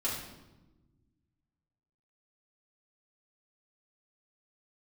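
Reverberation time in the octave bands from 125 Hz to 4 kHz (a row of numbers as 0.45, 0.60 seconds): 2.2, 2.0, 1.3, 0.95, 0.80, 0.75 seconds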